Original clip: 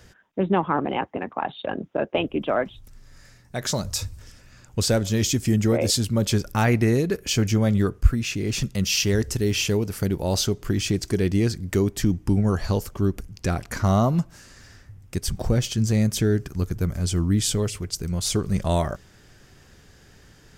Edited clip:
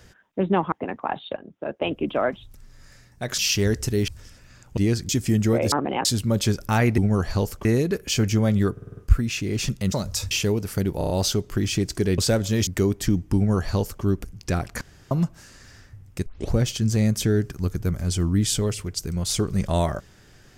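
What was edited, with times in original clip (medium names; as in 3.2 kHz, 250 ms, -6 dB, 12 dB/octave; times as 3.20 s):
0.72–1.05 s: move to 5.91 s
1.69–2.33 s: fade in, from -19.5 dB
3.71–4.10 s: swap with 8.86–9.56 s
4.79–5.28 s: swap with 11.31–11.63 s
7.91 s: stutter 0.05 s, 6 plays
10.23 s: stutter 0.03 s, 5 plays
12.32–12.99 s: copy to 6.84 s
13.77–14.07 s: room tone
15.22 s: tape start 0.27 s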